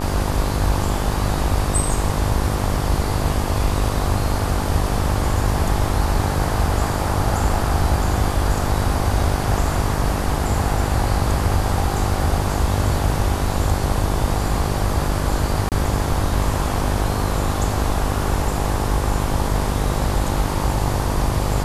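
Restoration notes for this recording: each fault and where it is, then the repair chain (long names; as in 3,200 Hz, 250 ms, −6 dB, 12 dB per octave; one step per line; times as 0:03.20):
mains buzz 50 Hz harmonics 24 −24 dBFS
0:15.69–0:15.72: drop-out 28 ms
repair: hum removal 50 Hz, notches 24
repair the gap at 0:15.69, 28 ms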